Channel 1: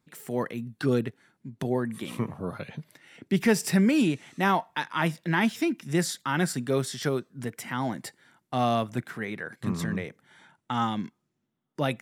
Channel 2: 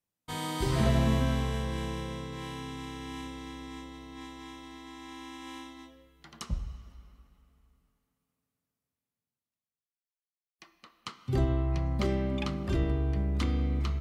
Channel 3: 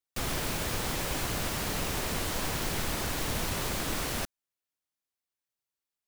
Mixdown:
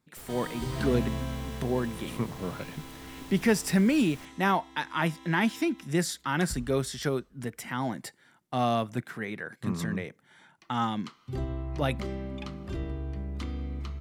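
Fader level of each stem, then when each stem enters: −1.5, −6.0, −17.0 decibels; 0.00, 0.00, 0.00 seconds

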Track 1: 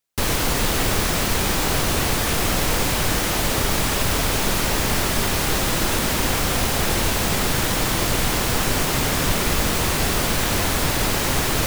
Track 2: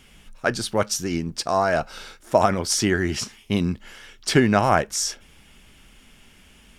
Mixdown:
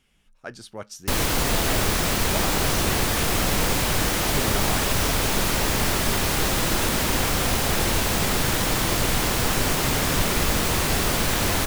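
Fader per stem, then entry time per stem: −1.5, −14.5 decibels; 0.90, 0.00 seconds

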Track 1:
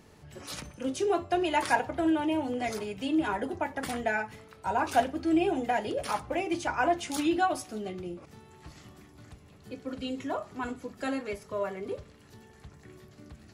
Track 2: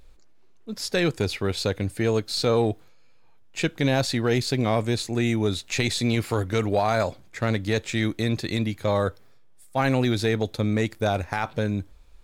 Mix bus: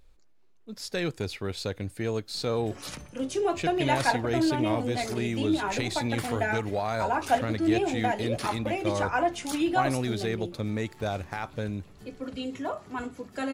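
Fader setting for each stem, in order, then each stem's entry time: +0.5, −7.0 decibels; 2.35, 0.00 seconds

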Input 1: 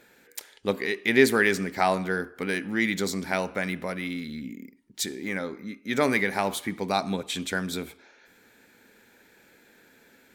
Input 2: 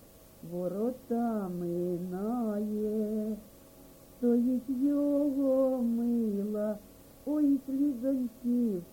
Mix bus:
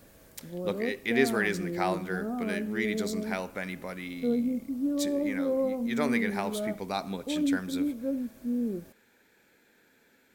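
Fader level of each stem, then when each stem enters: −6.5, −1.0 decibels; 0.00, 0.00 seconds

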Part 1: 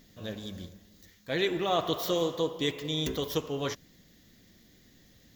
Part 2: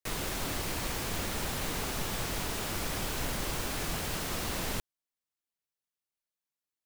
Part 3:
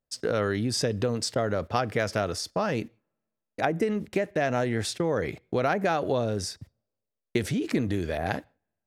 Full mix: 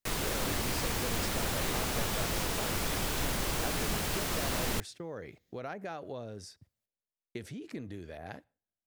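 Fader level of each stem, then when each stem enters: −18.5, +1.5, −15.0 decibels; 0.25, 0.00, 0.00 seconds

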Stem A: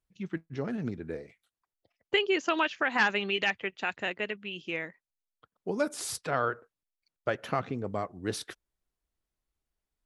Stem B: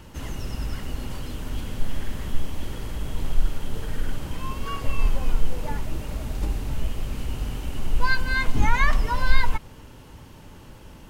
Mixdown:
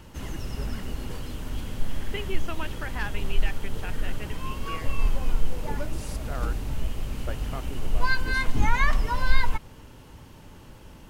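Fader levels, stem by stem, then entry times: −9.0, −2.0 decibels; 0.00, 0.00 seconds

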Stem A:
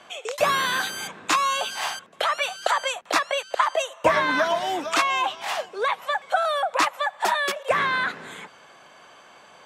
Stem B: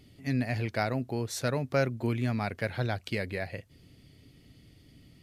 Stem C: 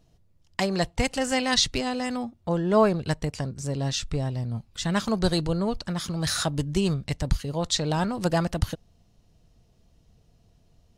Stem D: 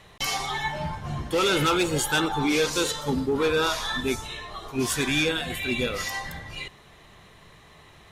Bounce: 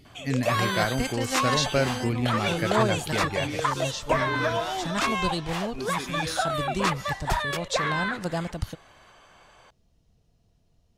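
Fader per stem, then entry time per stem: −5.0, +2.5, −5.5, −11.0 decibels; 0.05, 0.00, 0.00, 1.00 seconds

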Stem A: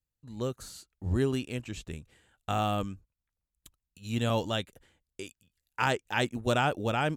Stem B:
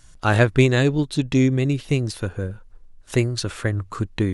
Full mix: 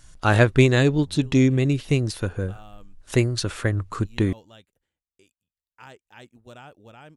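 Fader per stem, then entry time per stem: −18.0, 0.0 decibels; 0.00, 0.00 seconds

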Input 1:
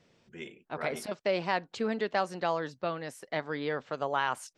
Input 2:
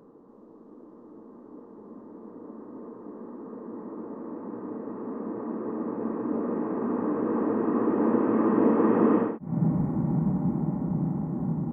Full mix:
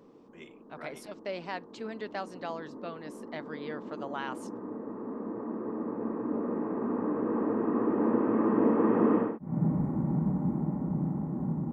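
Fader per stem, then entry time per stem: −7.5, −3.0 decibels; 0.00, 0.00 seconds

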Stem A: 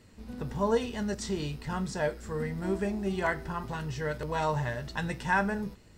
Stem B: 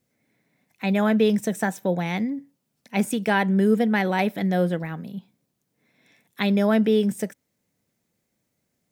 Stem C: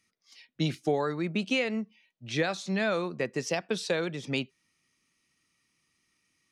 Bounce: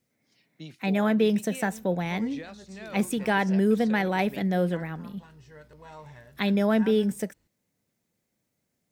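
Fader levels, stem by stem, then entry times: −16.5, −3.0, −14.0 decibels; 1.50, 0.00, 0.00 seconds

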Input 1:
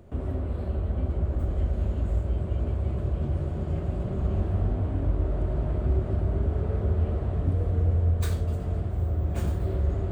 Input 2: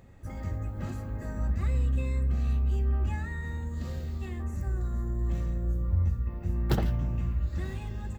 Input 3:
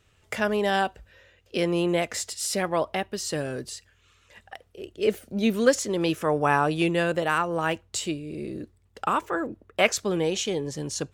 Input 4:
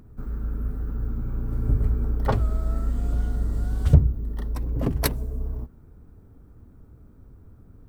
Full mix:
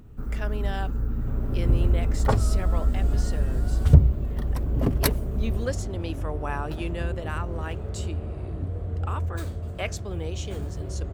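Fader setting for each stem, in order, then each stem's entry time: −5.5, −13.0, −10.5, +1.0 decibels; 1.15, 0.00, 0.00, 0.00 seconds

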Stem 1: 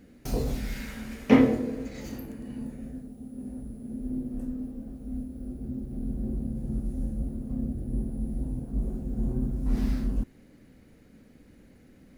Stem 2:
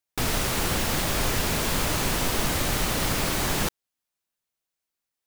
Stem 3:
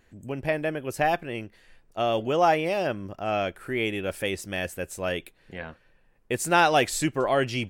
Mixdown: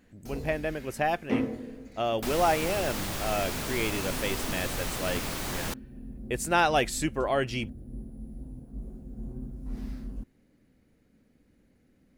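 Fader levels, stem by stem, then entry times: −10.0, −8.0, −3.5 decibels; 0.00, 2.05, 0.00 seconds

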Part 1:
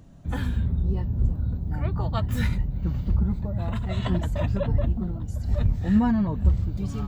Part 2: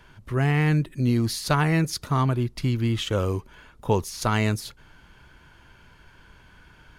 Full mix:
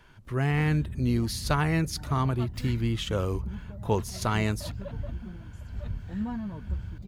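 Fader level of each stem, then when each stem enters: −12.0, −4.0 decibels; 0.25, 0.00 seconds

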